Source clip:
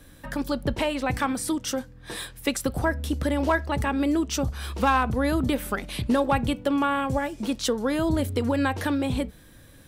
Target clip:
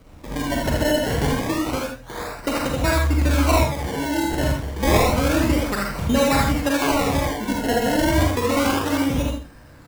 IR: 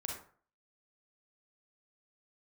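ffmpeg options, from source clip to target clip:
-filter_complex "[0:a]asettb=1/sr,asplit=3[link_01][link_02][link_03];[link_01]atrim=end=3.584[link_04];[link_02]atrim=start=3.58:end=4.25,asetpts=PTS-STARTPTS,afade=type=in:duration=0.004:curve=qsin,afade=type=out:start_time=0.666:duration=0.004:curve=qsin,agate=range=-33dB:threshold=-19dB:ratio=3:detection=peak[link_05];[link_03]atrim=start=4.246[link_06];[link_04][link_05]acrossfade=duration=0.004:curve1=hsin:curve2=qsin[link_07];[link_07][link_06]acrossfade=duration=0.004:curve1=qsin:curve2=hsin,aecho=1:1:79|158|237:0.668|0.14|0.0295,acrusher=samples=25:mix=1:aa=0.000001:lfo=1:lforange=25:lforate=0.29[link_08];[1:a]atrim=start_sample=2205,atrim=end_sample=4410[link_09];[link_08][link_09]afir=irnorm=-1:irlink=0,volume=4dB"

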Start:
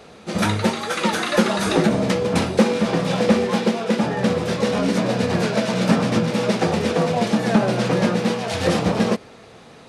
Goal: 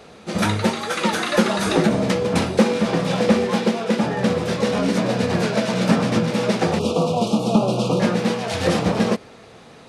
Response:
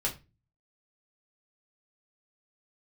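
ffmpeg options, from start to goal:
-filter_complex "[0:a]asettb=1/sr,asplit=3[link_01][link_02][link_03];[link_01]atrim=end=6.794[link_04];[link_02]atrim=start=6.79:end=8,asetpts=PTS-STARTPTS,afade=type=in:duration=0.004:curve=qsin,afade=type=out:start_time=1.206:duration=0.004:curve=qsin,asuperstop=centerf=1800:order=8:qfactor=1.4[link_05];[link_03]atrim=start=7.996[link_06];[link_04][link_05]acrossfade=duration=0.004:curve1=hsin:curve2=qsin[link_07];[link_07][link_06]acrossfade=duration=0.004:curve1=qsin:curve2=hsin"

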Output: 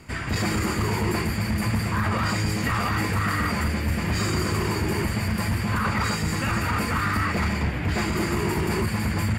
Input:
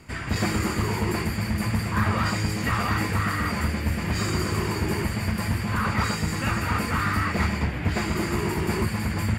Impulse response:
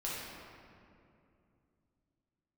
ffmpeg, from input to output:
-af "alimiter=limit=-17.5dB:level=0:latency=1:release=16,volume=2dB"

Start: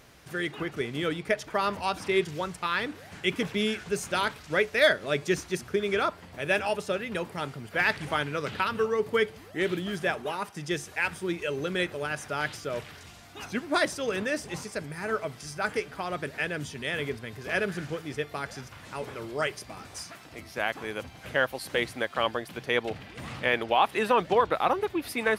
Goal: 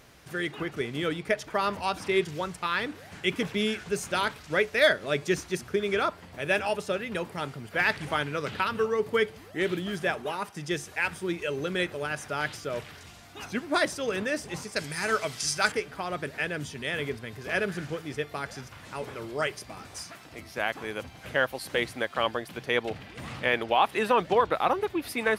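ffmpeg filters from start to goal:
ffmpeg -i in.wav -filter_complex "[0:a]asettb=1/sr,asplit=3[link_01][link_02][link_03];[link_01]atrim=end=14.764[link_04];[link_02]atrim=start=14.76:end=15.72,asetpts=PTS-STARTPTS,afade=type=in:duration=0.004:curve=qsin,afade=type=out:start_time=0.956:duration=0.004:curve=qsin,equalizer=frequency=6100:width=0.34:gain=14[link_05];[link_03]atrim=start=15.716[link_06];[link_04][link_05]acrossfade=duration=0.004:curve1=hsin:curve2=qsin[link_07];[link_07][link_06]acrossfade=duration=0.004:curve1=qsin:curve2=hsin" out.wav

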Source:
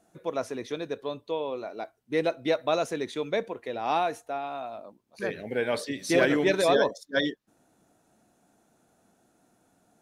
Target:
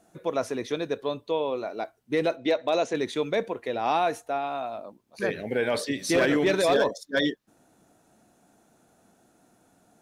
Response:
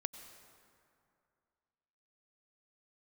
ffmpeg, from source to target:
-filter_complex "[0:a]asplit=3[link_01][link_02][link_03];[link_01]afade=type=out:start_time=2.36:duration=0.02[link_04];[link_02]highpass=130,equalizer=frequency=150:width_type=q:width=4:gain=-9,equalizer=frequency=1300:width_type=q:width=4:gain=-7,equalizer=frequency=5100:width_type=q:width=4:gain=-5,lowpass=frequency=6900:width=0.5412,lowpass=frequency=6900:width=1.3066,afade=type=in:start_time=2.36:duration=0.02,afade=type=out:start_time=2.93:duration=0.02[link_05];[link_03]afade=type=in:start_time=2.93:duration=0.02[link_06];[link_04][link_05][link_06]amix=inputs=3:normalize=0,asoftclip=type=hard:threshold=-16dB,alimiter=limit=-19.5dB:level=0:latency=1:release=11,volume=4dB"

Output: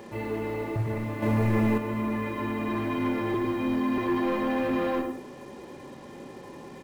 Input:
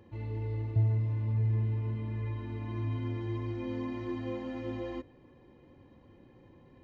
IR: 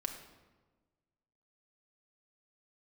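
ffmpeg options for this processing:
-filter_complex "[0:a]asettb=1/sr,asplit=3[link_01][link_02][link_03];[link_01]atrim=end=3.344[link_04];[link_02]atrim=start=3.34:end=3.98,asetpts=PTS-STARTPTS,afade=type=in:duration=0.004:curve=qsin,afade=type=out:start_time=0.636:duration=0.004:curve=qsin,acrossover=split=360|3000[link_05][link_06][link_07];[link_06]acompressor=threshold=-45dB:ratio=6[link_08];[link_05][link_08][link_07]amix=inputs=3:normalize=0[link_09];[link_03]atrim=start=3.976[link_10];[link_04][link_09]acrossfade=duration=0.004:curve1=hsin:curve2=qsin[link_11];[link_11][link_10]acrossfade=duration=0.004:curve1=qsin:curve2=hsin,asplit=2[link_12][link_13];[link_13]adelay=105,lowpass=frequency=990:poles=1,volume=-5dB,asplit=2[link_14][link_15];[link_15]adelay=105,lowpass=frequency=990:poles=1,volume=0.24,asplit=2[link_16][link_17];[link_17]adelay=105,lowpass=frequency=990:poles=1,volume=0.24[link_18];[link_12][link_14][link_16][link_18]amix=inputs=4:normalize=0,asplit=2[link_19][link_20];[link_20]highpass=frequency=720:poles=1,volume=25dB,asoftclip=type=tanh:threshold=-19dB[link_21];[link_19][link_21]amix=inputs=2:normalize=0,lowpass=frequency=1500:poles=1,volume=-6dB[link_22];[1:a]atrim=start_sample=2205,atrim=end_sample=3087[link_23];[link_22][link_23]afir=irnorm=-1:irlink=0,acrusher=bits=8:mix=0:aa=0.5,asettb=1/sr,asplit=3[link_24][link_25][link_26];[link_24]atrim=end=1.224[link_27];[link_25]atrim=start=1.22:end=1.78,asetpts=PTS-STARTPTS,afade=type=in:duration=0.004:curve=qsin,afade=type=out:start_time=0.556:duration=0.004:curve=qsin,acontrast=57[link_28];[link_26]atrim=start=1.776[link_29];[link_27][link_28]acrossfade=duration=0.004:curve1=hsin:curve2=qsin[link_30];[link_30][link_29]acrossfade=duration=0.004:curve1=qsin:curve2=hsin,volume=3dB"

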